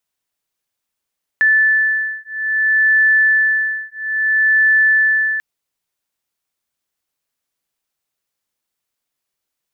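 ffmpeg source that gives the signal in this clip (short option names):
-f lavfi -i "aevalsrc='0.178*(sin(2*PI*1750*t)+sin(2*PI*1750.6*t))':d=3.99:s=44100"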